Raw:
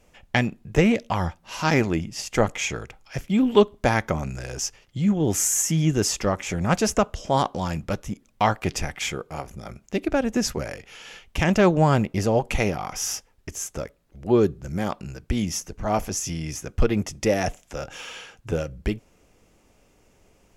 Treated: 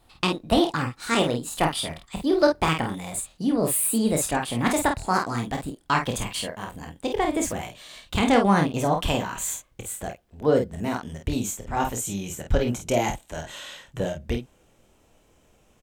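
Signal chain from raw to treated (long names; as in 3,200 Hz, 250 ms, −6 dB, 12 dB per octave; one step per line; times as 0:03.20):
gliding playback speed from 150% → 110%
ambience of single reflections 26 ms −7 dB, 50 ms −6 dB
level −2.5 dB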